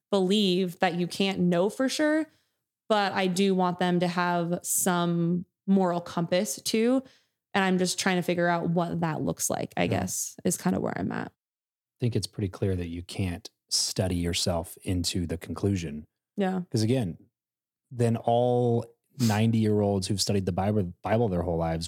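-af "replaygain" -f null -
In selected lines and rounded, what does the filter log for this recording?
track_gain = +7.9 dB
track_peak = 0.291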